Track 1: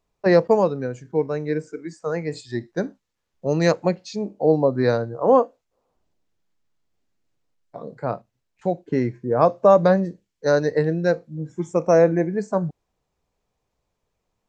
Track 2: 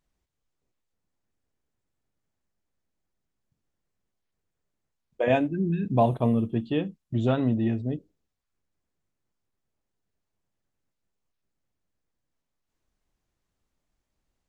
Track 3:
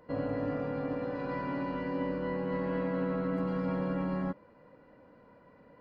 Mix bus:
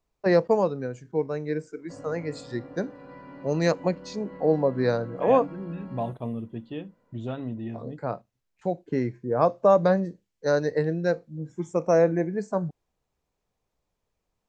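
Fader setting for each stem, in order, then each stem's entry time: -4.5, -9.0, -10.0 dB; 0.00, 0.00, 1.80 s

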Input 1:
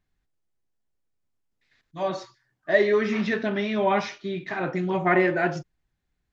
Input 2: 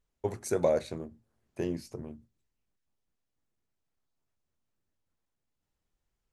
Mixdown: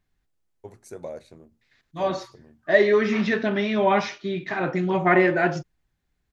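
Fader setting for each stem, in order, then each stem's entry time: +2.5, -10.0 dB; 0.00, 0.40 s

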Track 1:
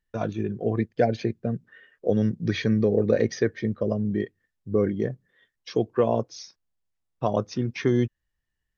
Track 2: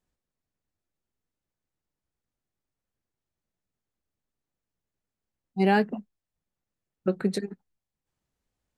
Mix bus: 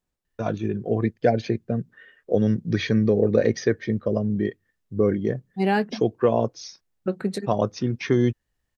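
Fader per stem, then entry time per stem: +2.0, 0.0 dB; 0.25, 0.00 s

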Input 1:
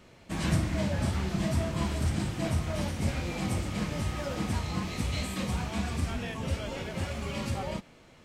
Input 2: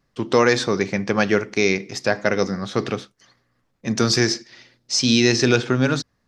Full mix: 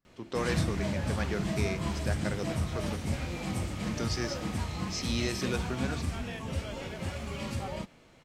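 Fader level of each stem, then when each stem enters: -2.5, -16.5 dB; 0.05, 0.00 s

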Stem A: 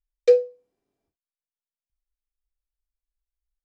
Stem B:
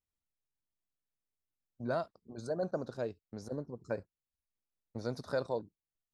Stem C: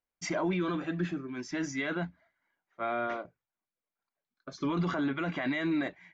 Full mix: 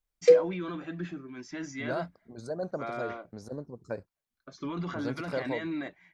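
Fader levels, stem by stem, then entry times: -2.0, +0.5, -4.5 dB; 0.00, 0.00, 0.00 s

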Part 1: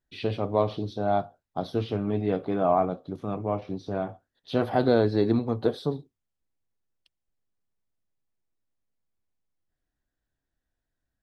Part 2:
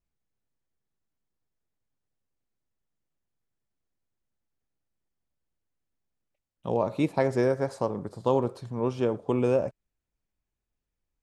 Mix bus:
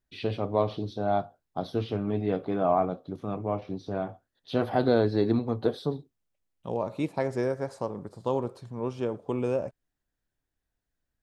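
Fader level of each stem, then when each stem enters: -1.5, -4.0 dB; 0.00, 0.00 s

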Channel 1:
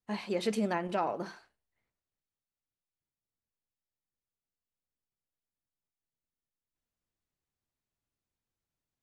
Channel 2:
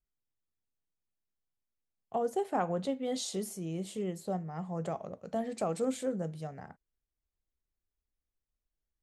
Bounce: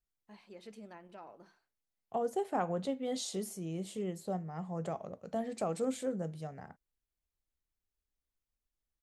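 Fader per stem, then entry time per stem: -19.5, -2.0 dB; 0.20, 0.00 s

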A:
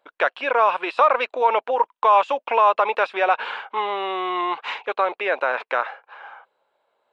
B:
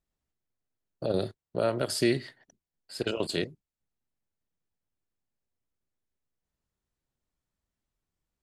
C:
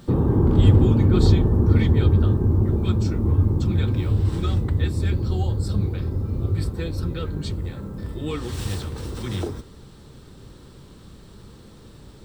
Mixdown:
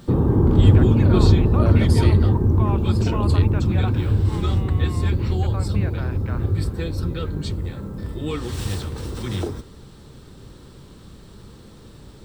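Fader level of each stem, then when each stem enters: -15.5, -2.5, +1.5 dB; 0.55, 0.00, 0.00 s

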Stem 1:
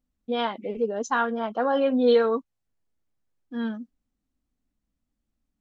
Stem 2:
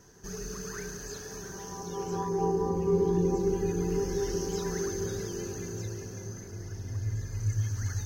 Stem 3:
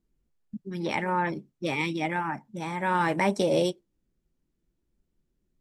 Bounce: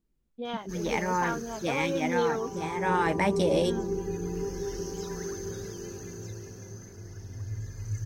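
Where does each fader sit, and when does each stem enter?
-9.0, -3.5, -1.5 dB; 0.10, 0.45, 0.00 s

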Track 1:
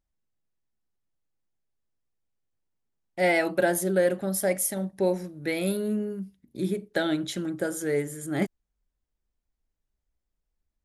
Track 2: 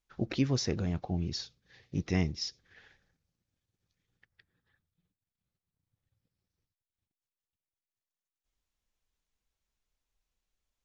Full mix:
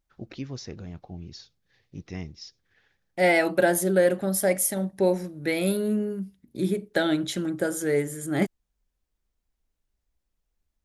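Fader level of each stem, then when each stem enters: +2.5, -7.0 dB; 0.00, 0.00 s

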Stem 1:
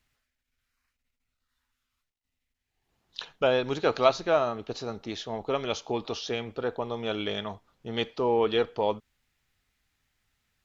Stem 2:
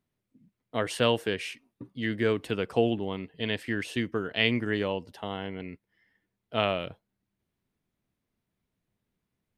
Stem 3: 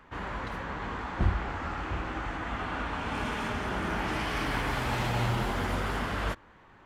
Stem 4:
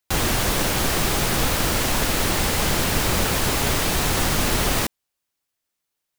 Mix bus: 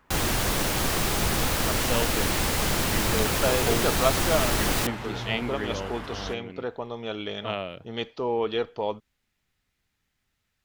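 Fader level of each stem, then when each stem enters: -2.0, -4.5, -6.5, -4.0 dB; 0.00, 0.90, 0.00, 0.00 s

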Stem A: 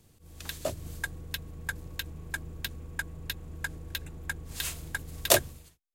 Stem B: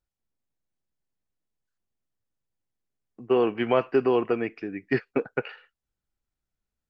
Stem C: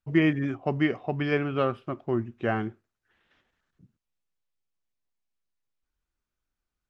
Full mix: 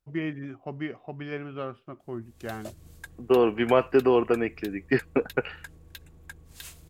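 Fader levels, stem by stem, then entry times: -9.5, +1.5, -9.0 dB; 2.00, 0.00, 0.00 s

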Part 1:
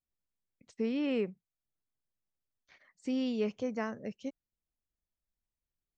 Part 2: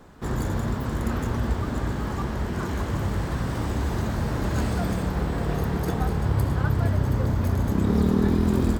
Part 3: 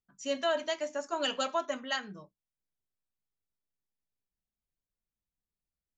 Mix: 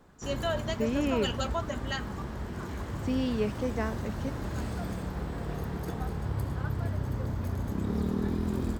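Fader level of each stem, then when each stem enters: +2.5, -9.0, -2.0 dB; 0.00, 0.00, 0.00 s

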